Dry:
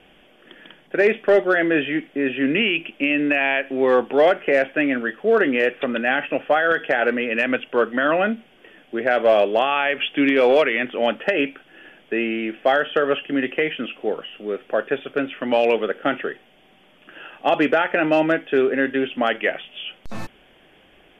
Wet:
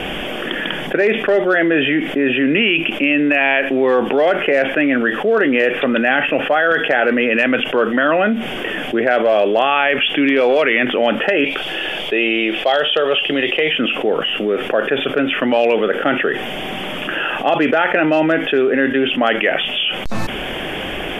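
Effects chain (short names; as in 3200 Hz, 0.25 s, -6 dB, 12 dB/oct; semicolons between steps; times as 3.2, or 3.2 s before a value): 11.44–13.73 fifteen-band EQ 100 Hz -12 dB, 250 Hz -11 dB, 1600 Hz -7 dB, 4000 Hz +11 dB; fast leveller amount 70%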